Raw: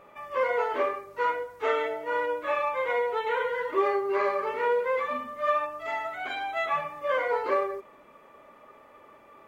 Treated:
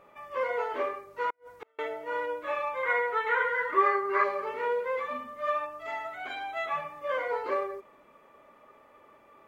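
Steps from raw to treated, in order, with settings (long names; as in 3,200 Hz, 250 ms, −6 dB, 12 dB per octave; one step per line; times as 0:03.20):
0:01.30–0:01.79: gate with flip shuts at −24 dBFS, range −41 dB
0:02.83–0:04.24: flat-topped bell 1,500 Hz +10 dB 1.2 octaves
level −4 dB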